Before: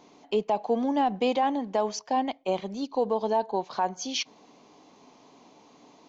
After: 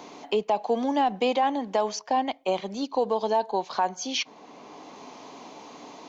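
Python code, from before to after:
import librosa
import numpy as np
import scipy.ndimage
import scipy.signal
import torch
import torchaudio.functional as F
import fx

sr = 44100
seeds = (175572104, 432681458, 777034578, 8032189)

y = fx.low_shelf(x, sr, hz=370.0, db=-7.0)
y = fx.band_squash(y, sr, depth_pct=40)
y = F.gain(torch.from_numpy(y), 3.5).numpy()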